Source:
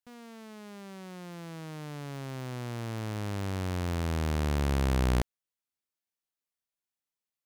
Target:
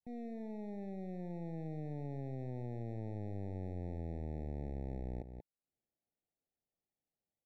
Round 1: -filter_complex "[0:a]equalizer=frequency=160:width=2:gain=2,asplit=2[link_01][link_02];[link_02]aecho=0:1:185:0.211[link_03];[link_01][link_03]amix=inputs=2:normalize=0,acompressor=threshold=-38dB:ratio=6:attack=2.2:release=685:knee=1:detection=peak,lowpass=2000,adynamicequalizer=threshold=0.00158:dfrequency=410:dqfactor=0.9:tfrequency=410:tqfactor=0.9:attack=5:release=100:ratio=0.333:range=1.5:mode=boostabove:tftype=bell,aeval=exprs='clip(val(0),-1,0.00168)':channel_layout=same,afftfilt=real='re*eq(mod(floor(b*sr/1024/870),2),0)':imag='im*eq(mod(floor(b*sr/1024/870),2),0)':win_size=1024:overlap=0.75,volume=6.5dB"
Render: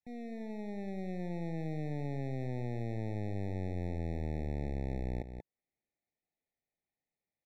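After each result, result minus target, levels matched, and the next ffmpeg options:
2,000 Hz band +7.5 dB; downward compressor: peak gain reduction −5.5 dB
-filter_complex "[0:a]equalizer=frequency=160:width=2:gain=2,asplit=2[link_01][link_02];[link_02]aecho=0:1:185:0.211[link_03];[link_01][link_03]amix=inputs=2:normalize=0,acompressor=threshold=-38dB:ratio=6:attack=2.2:release=685:knee=1:detection=peak,lowpass=850,adynamicequalizer=threshold=0.00158:dfrequency=410:dqfactor=0.9:tfrequency=410:tqfactor=0.9:attack=5:release=100:ratio=0.333:range=1.5:mode=boostabove:tftype=bell,aeval=exprs='clip(val(0),-1,0.00168)':channel_layout=same,afftfilt=real='re*eq(mod(floor(b*sr/1024/870),2),0)':imag='im*eq(mod(floor(b*sr/1024/870),2),0)':win_size=1024:overlap=0.75,volume=6.5dB"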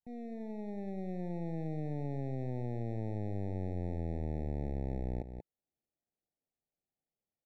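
downward compressor: peak gain reduction −5.5 dB
-filter_complex "[0:a]equalizer=frequency=160:width=2:gain=2,asplit=2[link_01][link_02];[link_02]aecho=0:1:185:0.211[link_03];[link_01][link_03]amix=inputs=2:normalize=0,acompressor=threshold=-44.5dB:ratio=6:attack=2.2:release=685:knee=1:detection=peak,lowpass=850,adynamicequalizer=threshold=0.00158:dfrequency=410:dqfactor=0.9:tfrequency=410:tqfactor=0.9:attack=5:release=100:ratio=0.333:range=1.5:mode=boostabove:tftype=bell,aeval=exprs='clip(val(0),-1,0.00168)':channel_layout=same,afftfilt=real='re*eq(mod(floor(b*sr/1024/870),2),0)':imag='im*eq(mod(floor(b*sr/1024/870),2),0)':win_size=1024:overlap=0.75,volume=6.5dB"

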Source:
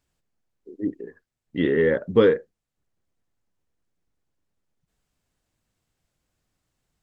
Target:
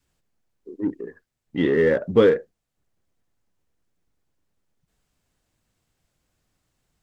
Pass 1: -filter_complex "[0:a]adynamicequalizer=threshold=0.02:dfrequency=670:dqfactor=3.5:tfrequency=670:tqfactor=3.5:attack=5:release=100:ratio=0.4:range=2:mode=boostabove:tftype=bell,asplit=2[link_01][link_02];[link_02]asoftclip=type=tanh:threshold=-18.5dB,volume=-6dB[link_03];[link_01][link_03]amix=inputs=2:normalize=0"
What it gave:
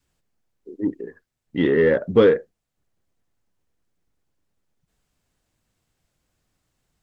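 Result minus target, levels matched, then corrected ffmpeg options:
soft clipping: distortion −6 dB
-filter_complex "[0:a]adynamicequalizer=threshold=0.02:dfrequency=670:dqfactor=3.5:tfrequency=670:tqfactor=3.5:attack=5:release=100:ratio=0.4:range=2:mode=boostabove:tftype=bell,asplit=2[link_01][link_02];[link_02]asoftclip=type=tanh:threshold=-29.5dB,volume=-6dB[link_03];[link_01][link_03]amix=inputs=2:normalize=0"

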